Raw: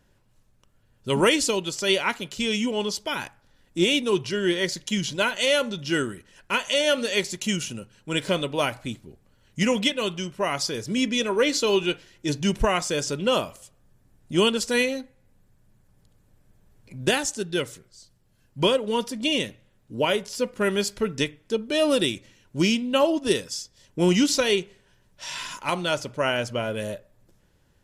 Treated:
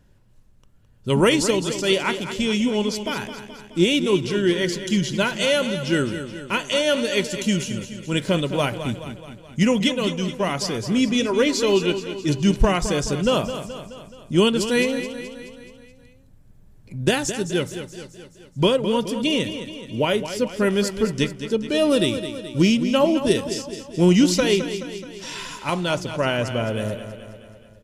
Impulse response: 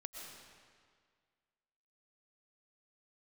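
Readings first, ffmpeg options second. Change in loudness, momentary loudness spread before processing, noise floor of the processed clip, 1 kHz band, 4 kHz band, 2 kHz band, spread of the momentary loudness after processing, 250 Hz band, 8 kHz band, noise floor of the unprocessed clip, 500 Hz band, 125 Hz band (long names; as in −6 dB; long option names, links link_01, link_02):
+2.5 dB, 12 LU, −51 dBFS, +1.5 dB, +0.5 dB, +0.5 dB, 14 LU, +5.5 dB, +0.5 dB, −63 dBFS, +3.0 dB, +7.0 dB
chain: -af "lowshelf=frequency=300:gain=8.5,aecho=1:1:213|426|639|852|1065|1278:0.299|0.167|0.0936|0.0524|0.0294|0.0164"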